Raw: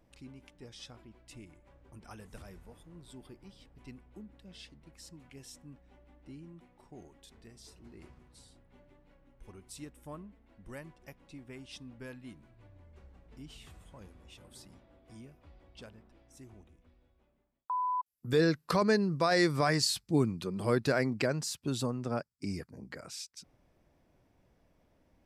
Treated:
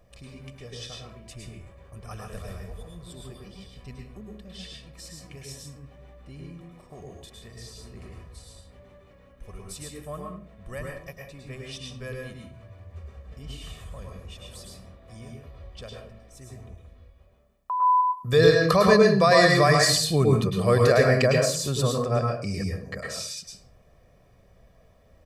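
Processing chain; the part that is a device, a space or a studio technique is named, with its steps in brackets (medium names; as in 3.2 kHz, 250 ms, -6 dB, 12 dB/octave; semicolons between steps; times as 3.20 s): microphone above a desk (comb 1.7 ms, depth 67%; reverberation RT60 0.45 s, pre-delay 100 ms, DRR -0.5 dB); trim +6 dB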